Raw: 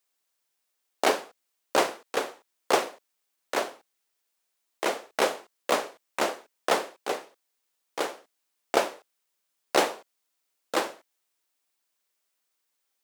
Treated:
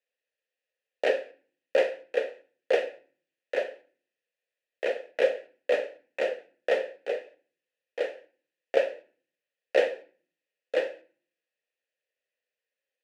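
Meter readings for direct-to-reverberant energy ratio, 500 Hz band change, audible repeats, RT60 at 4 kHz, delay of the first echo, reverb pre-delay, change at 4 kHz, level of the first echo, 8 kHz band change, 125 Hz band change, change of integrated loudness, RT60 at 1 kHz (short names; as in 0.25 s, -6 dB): 9.5 dB, +3.0 dB, none, 0.40 s, none, 4 ms, -8.0 dB, none, under -15 dB, n/a, -0.5 dB, 0.45 s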